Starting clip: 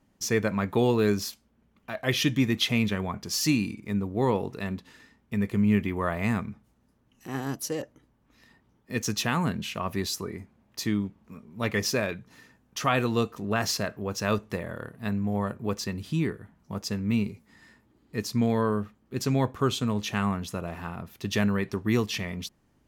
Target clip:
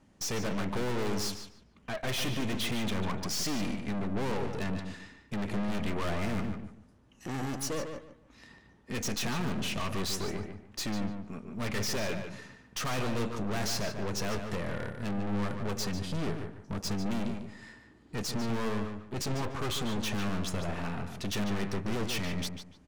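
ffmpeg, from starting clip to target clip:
ffmpeg -i in.wav -filter_complex "[0:a]lowpass=frequency=10000:width=0.5412,lowpass=frequency=10000:width=1.3066,aeval=exprs='(tanh(89.1*val(0)+0.6)-tanh(0.6))/89.1':channel_layout=same,asplit=2[link_01][link_02];[link_02]adelay=147,lowpass=frequency=3900:poles=1,volume=-6.5dB,asplit=2[link_03][link_04];[link_04]adelay=147,lowpass=frequency=3900:poles=1,volume=0.25,asplit=2[link_05][link_06];[link_06]adelay=147,lowpass=frequency=3900:poles=1,volume=0.25[link_07];[link_03][link_05][link_07]amix=inputs=3:normalize=0[link_08];[link_01][link_08]amix=inputs=2:normalize=0,volume=7dB" out.wav

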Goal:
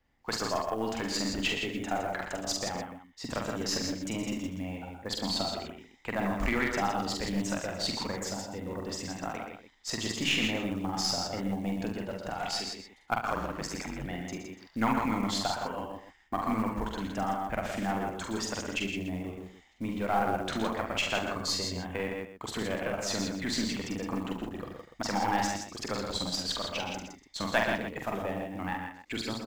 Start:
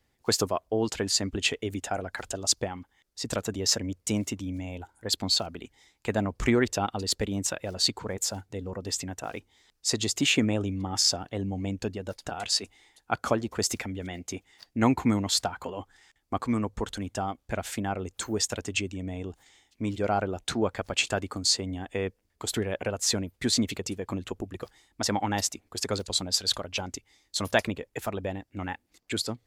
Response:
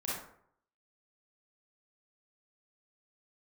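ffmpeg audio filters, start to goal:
-filter_complex "[0:a]asettb=1/sr,asplit=3[link_01][link_02][link_03];[link_01]atrim=end=21.304[link_04];[link_02]atrim=start=21.3:end=21.85,asetpts=PTS-STARTPTS,afade=type=in:duration=0.004:curve=qsin,afade=type=out:start_time=0.546:duration=0.004:curve=qsin,aecho=1:1:1.9:0.43,atrim=end_sample=24255[link_05];[link_03]atrim=start=21.846[link_06];[link_04][link_05]acrossfade=duration=0.004:curve1=hsin:curve2=qsin[link_07];[link_07][link_06]acrossfade=duration=0.004:curve1=qsin:curve2=hsin,acrossover=split=710[link_08][link_09];[link_08]alimiter=limit=-24dB:level=0:latency=1[link_10];[link_10][link_09]amix=inputs=2:normalize=0,highshelf=frequency=4600:gain=-11,asplit=2[link_11][link_12];[link_12]adelay=128.3,volume=-8dB,highshelf=frequency=4000:gain=-2.89[link_13];[link_11][link_13]amix=inputs=2:normalize=0,asettb=1/sr,asplit=3[link_14][link_15][link_16];[link_14]atrim=end=13.204[link_17];[link_15]atrim=start=13.2:end=14.05,asetpts=PTS-STARTPTS,afade=type=in:duration=0.004:curve=qsin,afade=type=out:start_time=0.846:duration=0.004:curve=qsin,aeval=exprs='val(0)*sin(2*PI*46*n/s)':channel_layout=same[link_18];[link_16]atrim=start=14.046[link_19];[link_17][link_18]acrossfade=duration=0.004:curve1=hsin:curve2=qsin[link_20];[link_20][link_19]acrossfade=duration=0.004:curve1=qsin:curve2=hsin,equalizer=frequency=100:width_type=o:width=0.67:gain=-10,equalizer=frequency=400:width_type=o:width=0.67:gain=-5,equalizer=frequency=4000:width_type=o:width=0.67:gain=-3,equalizer=frequency=10000:width_type=o:width=0.67:gain=-9,asplit=2[link_21][link_22];[link_22]aecho=0:1:45|46|72|115|163:0.631|0.355|0.282|0.335|0.473[link_23];[link_21][link_23]amix=inputs=2:normalize=0,aeval=exprs='0.335*(cos(1*acos(clip(val(0)/0.335,-1,1)))-cos(1*PI/2))+0.00668*(cos(3*acos(clip(val(0)/0.335,-1,1)))-cos(3*PI/2))+0.0133*(cos(8*acos(clip(val(0)/0.335,-1,1)))-cos(8*PI/2))':channel_layout=same,acrusher=bits=7:mode=log:mix=0:aa=0.000001"

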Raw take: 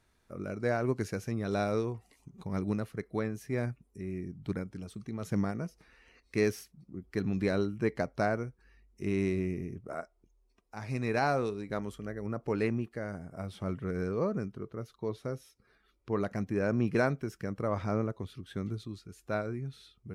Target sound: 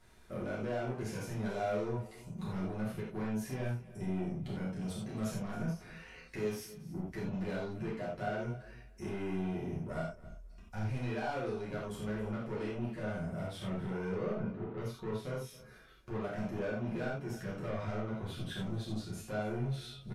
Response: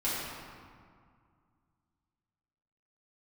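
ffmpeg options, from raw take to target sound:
-filter_complex "[0:a]asplit=3[link_01][link_02][link_03];[link_01]afade=type=out:start_time=9.87:duration=0.02[link_04];[link_02]asubboost=boost=5.5:cutoff=160,afade=type=in:start_time=9.87:duration=0.02,afade=type=out:start_time=10.87:duration=0.02[link_05];[link_03]afade=type=in:start_time=10.87:duration=0.02[link_06];[link_04][link_05][link_06]amix=inputs=3:normalize=0,asettb=1/sr,asplit=3[link_07][link_08][link_09];[link_07]atrim=end=14.314[link_10];[link_08]atrim=start=14.31:end=14.81,asetpts=PTS-STARTPTS,afade=type=in:duration=0.004:curve=qsin,afade=type=out:start_time=0.496:duration=0.004:curve=qsin,lowpass=1900[link_11];[link_09]atrim=start=14.806[link_12];[link_10][link_11]acrossfade=duration=0.004:curve1=hsin:curve2=qsin[link_13];[link_13][link_12]acrossfade=duration=0.004:curve1=qsin:curve2=hsin,asplit=2[link_14][link_15];[link_15]acompressor=threshold=-43dB:ratio=6,volume=0dB[link_16];[link_14][link_16]amix=inputs=2:normalize=0,alimiter=level_in=2.5dB:limit=-24dB:level=0:latency=1:release=288,volume=-2.5dB,asoftclip=type=tanh:threshold=-36dB,asplit=2[link_17][link_18];[link_18]adelay=31,volume=-12dB[link_19];[link_17][link_19]amix=inputs=2:normalize=0,aecho=1:1:273|546:0.119|0.0214[link_20];[1:a]atrim=start_sample=2205,atrim=end_sample=3087,asetrate=29988,aresample=44100[link_21];[link_20][link_21]afir=irnorm=-1:irlink=0,volume=-4.5dB"

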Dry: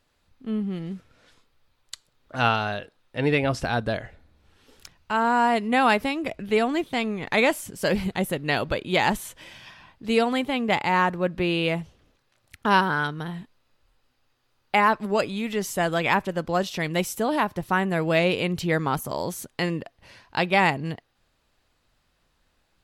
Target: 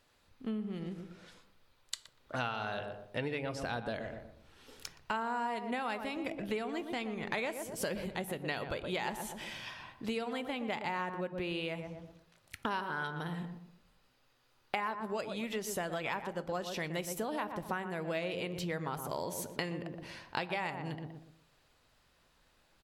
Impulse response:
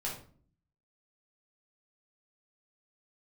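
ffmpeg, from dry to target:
-filter_complex "[0:a]asplit=2[link_01][link_02];[link_02]adelay=120,lowpass=frequency=1000:poles=1,volume=-8dB,asplit=2[link_03][link_04];[link_04]adelay=120,lowpass=frequency=1000:poles=1,volume=0.36,asplit=2[link_05][link_06];[link_06]adelay=120,lowpass=frequency=1000:poles=1,volume=0.36,asplit=2[link_07][link_08];[link_08]adelay=120,lowpass=frequency=1000:poles=1,volume=0.36[link_09];[link_01][link_03][link_05][link_07][link_09]amix=inputs=5:normalize=0,acompressor=threshold=-33dB:ratio=12,lowshelf=frequency=200:gain=-5,asplit=2[link_10][link_11];[link_11]highpass=59[link_12];[1:a]atrim=start_sample=2205[link_13];[link_12][link_13]afir=irnorm=-1:irlink=0,volume=-15dB[link_14];[link_10][link_14]amix=inputs=2:normalize=0"

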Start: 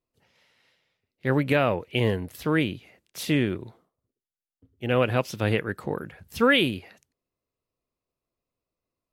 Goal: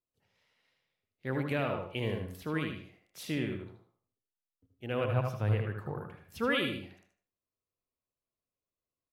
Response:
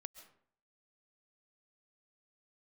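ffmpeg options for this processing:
-filter_complex "[0:a]asettb=1/sr,asplit=3[link_01][link_02][link_03];[link_01]atrim=end=5.044[link_04];[link_02]atrim=start=5.04:end=6.08,asetpts=PTS-STARTPTS,afade=type=in:duration=0.004:curve=qsin,afade=type=out:start_time=1.036:duration=0.004:curve=qsin,equalizer=frequency=125:width_type=o:width=1:gain=11,equalizer=frequency=250:width_type=o:width=1:gain=-5,equalizer=frequency=1000:width_type=o:width=1:gain=4,equalizer=frequency=2000:width_type=o:width=1:gain=-3,equalizer=frequency=4000:width_type=o:width=1:gain=-6,equalizer=frequency=8000:width_type=o:width=1:gain=-7[link_05];[link_03]atrim=start=6.076[link_06];[link_04][link_05]acrossfade=duration=0.004:curve1=hsin:curve2=qsin[link_07];[link_07][link_06]acrossfade=duration=0.004:curve1=qsin:curve2=hsin,asplit=2[link_08][link_09];[link_09]adelay=77,lowpass=frequency=4000:poles=1,volume=-5dB,asplit=2[link_10][link_11];[link_11]adelay=77,lowpass=frequency=4000:poles=1,volume=0.27,asplit=2[link_12][link_13];[link_13]adelay=77,lowpass=frequency=4000:poles=1,volume=0.27,asplit=2[link_14][link_15];[link_15]adelay=77,lowpass=frequency=4000:poles=1,volume=0.27[link_16];[link_08][link_10][link_12][link_14][link_16]amix=inputs=5:normalize=0[link_17];[1:a]atrim=start_sample=2205,asetrate=79380,aresample=44100[link_18];[link_17][link_18]afir=irnorm=-1:irlink=0"

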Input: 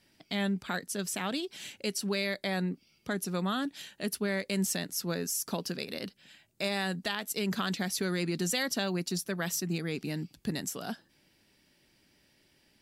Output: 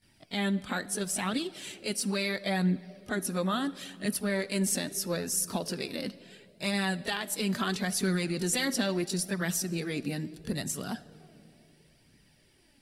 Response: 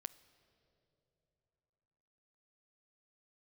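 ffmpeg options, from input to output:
-filter_complex "[0:a]equalizer=frequency=9300:width=2.9:gain=9.5,asplit=2[link_01][link_02];[1:a]atrim=start_sample=2205,highshelf=frequency=7900:gain=-4.5,adelay=21[link_03];[link_02][link_03]afir=irnorm=-1:irlink=0,volume=15.5dB[link_04];[link_01][link_04]amix=inputs=2:normalize=0,flanger=delay=0.4:depth=3.6:regen=43:speed=0.74:shape=triangular,lowshelf=frequency=190:gain=5.5,volume=-6dB"

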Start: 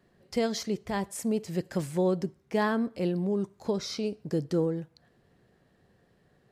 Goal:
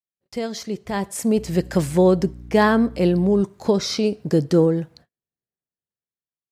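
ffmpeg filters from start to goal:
ffmpeg -i in.wav -filter_complex "[0:a]agate=range=-44dB:threshold=-57dB:ratio=16:detection=peak,dynaudnorm=framelen=230:gausssize=9:maxgain=11dB,asettb=1/sr,asplit=3[link_01][link_02][link_03];[link_01]atrim=end=1.374[link_04];[link_02]atrim=start=1.37:end=3.42,asetpts=PTS-STARTPTS,afade=type=in:duration=0.004:curve=qsin,afade=type=out:start_time=2.046:duration=0.004:curve=qsin,aeval=exprs='val(0)+0.0141*(sin(2*PI*60*n/s)+sin(2*PI*2*60*n/s)/2+sin(2*PI*3*60*n/s)/3+sin(2*PI*4*60*n/s)/4+sin(2*PI*5*60*n/s)/5)':channel_layout=same[link_05];[link_03]atrim=start=3.416[link_06];[link_04][link_05]acrossfade=duration=0.004:curve1=hsin:curve2=qsin[link_07];[link_07][link_06]acrossfade=duration=0.004:curve1=qsin:curve2=hsin" out.wav

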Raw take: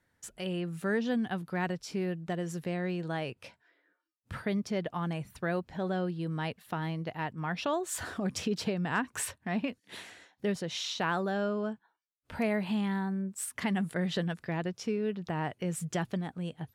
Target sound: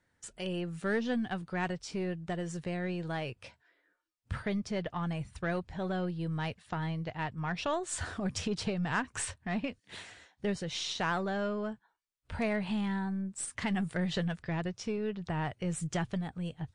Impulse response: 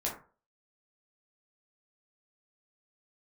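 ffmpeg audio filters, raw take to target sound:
-af "asubboost=boost=4:cutoff=110,aeval=exprs='0.119*(cos(1*acos(clip(val(0)/0.119,-1,1)))-cos(1*PI/2))+0.00473*(cos(6*acos(clip(val(0)/0.119,-1,1)))-cos(6*PI/2))+0.000668*(cos(7*acos(clip(val(0)/0.119,-1,1)))-cos(7*PI/2))':channel_layout=same" -ar 22050 -c:a libmp3lame -b:a 48k

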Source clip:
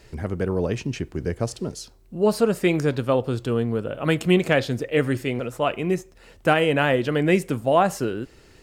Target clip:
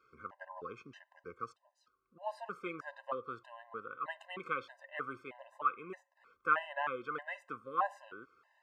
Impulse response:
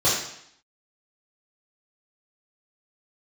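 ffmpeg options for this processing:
-filter_complex "[0:a]asplit=3[link_01][link_02][link_03];[link_01]afade=type=out:start_time=1.52:duration=0.02[link_04];[link_02]acompressor=threshold=-41dB:ratio=6,afade=type=in:start_time=1.52:duration=0.02,afade=type=out:start_time=2.15:duration=0.02[link_05];[link_03]afade=type=in:start_time=2.15:duration=0.02[link_06];[link_04][link_05][link_06]amix=inputs=3:normalize=0,bandpass=frequency=1200:width_type=q:width=5.7:csg=0,afftfilt=real='re*gt(sin(2*PI*1.6*pts/sr)*(1-2*mod(floor(b*sr/1024/520),2)),0)':imag='im*gt(sin(2*PI*1.6*pts/sr)*(1-2*mod(floor(b*sr/1024/520),2)),0)':win_size=1024:overlap=0.75,volume=2.5dB"

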